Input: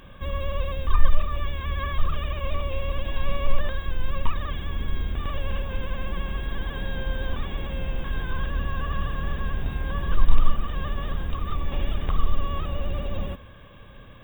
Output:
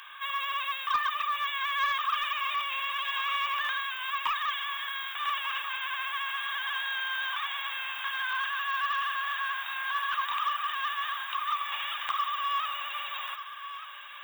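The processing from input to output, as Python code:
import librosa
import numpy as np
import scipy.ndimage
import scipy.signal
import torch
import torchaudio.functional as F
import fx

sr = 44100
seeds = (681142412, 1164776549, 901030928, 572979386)

y = scipy.signal.sosfilt(scipy.signal.butter(6, 1000.0, 'highpass', fs=sr, output='sos'), x)
y = 10.0 ** (-27.0 / 20.0) * np.tanh(y / 10.0 ** (-27.0 / 20.0))
y = y + 10.0 ** (-12.0 / 20.0) * np.pad(y, (int(1189 * sr / 1000.0), 0))[:len(y)]
y = y * librosa.db_to_amplitude(8.0)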